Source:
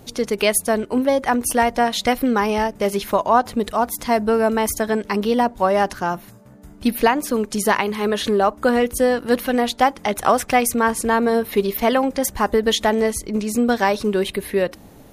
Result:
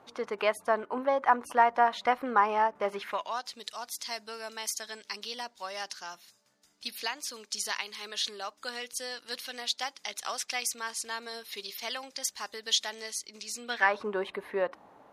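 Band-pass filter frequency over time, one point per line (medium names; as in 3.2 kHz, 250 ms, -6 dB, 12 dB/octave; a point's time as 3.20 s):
band-pass filter, Q 1.9
2.93 s 1.1 kHz
3.38 s 4.9 kHz
13.58 s 4.9 kHz
13.98 s 1 kHz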